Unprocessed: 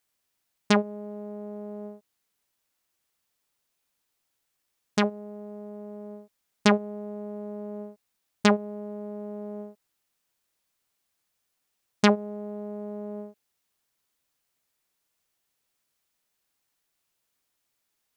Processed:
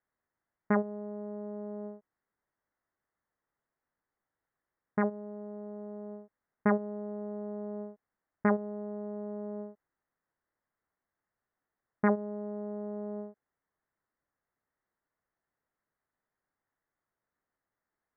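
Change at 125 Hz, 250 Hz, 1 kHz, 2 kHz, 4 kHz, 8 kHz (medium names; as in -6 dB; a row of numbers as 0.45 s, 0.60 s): -5.0 dB, -5.0 dB, -6.0 dB, -8.0 dB, under -40 dB, under -35 dB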